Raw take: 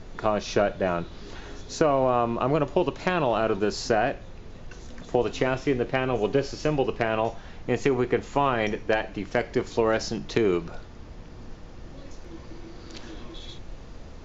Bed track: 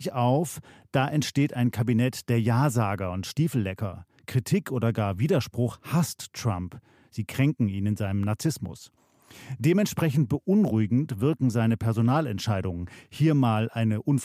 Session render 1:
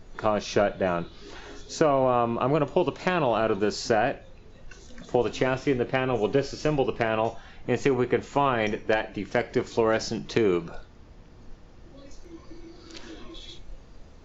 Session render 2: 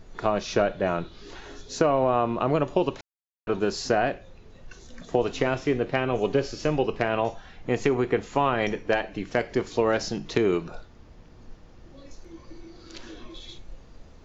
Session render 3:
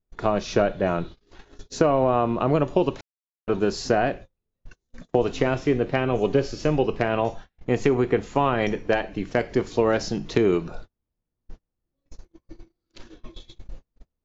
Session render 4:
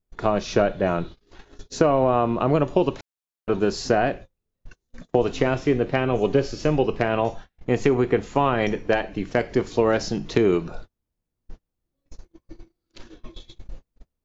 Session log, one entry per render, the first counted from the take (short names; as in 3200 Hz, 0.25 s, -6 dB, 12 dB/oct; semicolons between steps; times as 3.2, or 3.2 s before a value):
noise print and reduce 7 dB
3.01–3.47 mute
gate -39 dBFS, range -38 dB; low shelf 470 Hz +4.5 dB
gain +1 dB